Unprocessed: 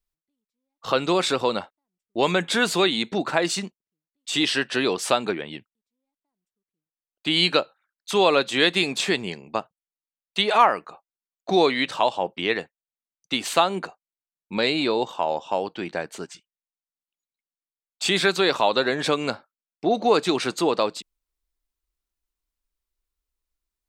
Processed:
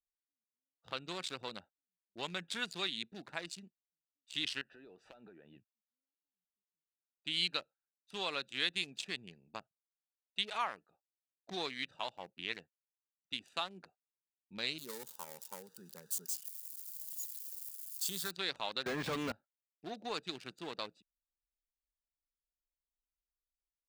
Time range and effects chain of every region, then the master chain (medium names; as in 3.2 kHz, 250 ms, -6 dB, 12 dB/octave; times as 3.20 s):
4.61–5.56 s: overdrive pedal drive 14 dB, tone 1.3 kHz, clips at -4.5 dBFS + treble shelf 7.2 kHz -9 dB + compression 5:1, threshold -29 dBFS
14.78–18.31 s: zero-crossing glitches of -17.5 dBFS + static phaser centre 460 Hz, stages 8
18.86–19.32 s: waveshaping leveller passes 5 + de-esser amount 90% + high-pass 45 Hz
whole clip: local Wiener filter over 41 samples; level rider gain up to 5.5 dB; amplifier tone stack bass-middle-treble 5-5-5; trim -7 dB